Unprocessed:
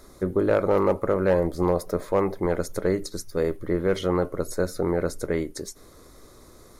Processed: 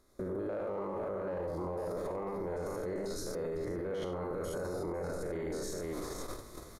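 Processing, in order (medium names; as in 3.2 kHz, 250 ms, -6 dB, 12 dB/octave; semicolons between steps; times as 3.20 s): spectrogram pixelated in time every 100 ms; on a send: multi-tap echo 66/91/138/505 ms -6.5/-6/-18.5/-10.5 dB; on the sum: gate -45 dBFS, range -17 dB; level rider gain up to 16 dB; dynamic bell 760 Hz, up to +7 dB, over -51 dBFS, Q 0.79; peak limiter -30.5 dBFS, peak gain reduction 33 dB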